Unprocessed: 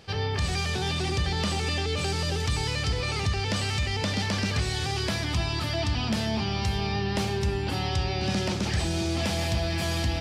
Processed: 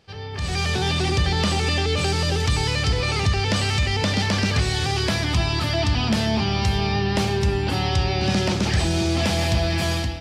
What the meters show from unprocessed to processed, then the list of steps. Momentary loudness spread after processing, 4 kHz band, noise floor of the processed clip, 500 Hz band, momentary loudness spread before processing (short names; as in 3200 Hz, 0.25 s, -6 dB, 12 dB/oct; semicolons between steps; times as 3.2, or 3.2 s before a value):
1 LU, +5.5 dB, -27 dBFS, +6.0 dB, 1 LU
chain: high shelf 8400 Hz -3.5 dB; AGC gain up to 15 dB; gain -7.5 dB